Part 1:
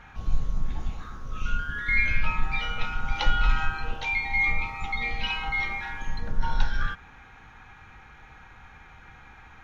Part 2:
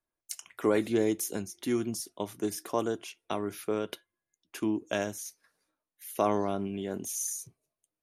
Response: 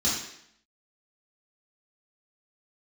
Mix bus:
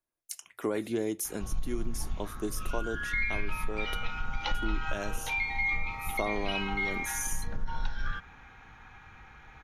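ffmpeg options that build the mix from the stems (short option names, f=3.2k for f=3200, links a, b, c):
-filter_complex "[0:a]adelay=1250,volume=-2.5dB[a];[1:a]equalizer=f=11k:t=o:w=0.33:g=4,volume=-2dB[b];[a][b]amix=inputs=2:normalize=0,acompressor=threshold=-26dB:ratio=4"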